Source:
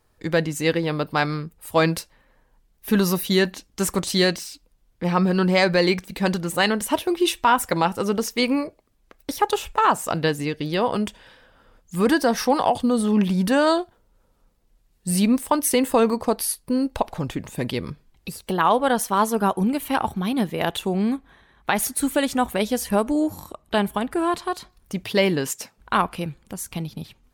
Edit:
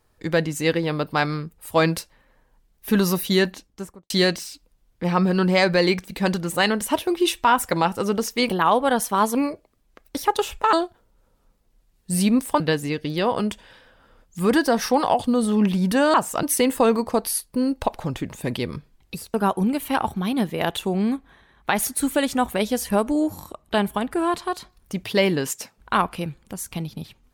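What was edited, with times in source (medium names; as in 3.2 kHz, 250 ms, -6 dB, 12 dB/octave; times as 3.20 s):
3.42–4.10 s: studio fade out
9.87–10.16 s: swap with 13.70–15.57 s
18.48–19.34 s: move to 8.49 s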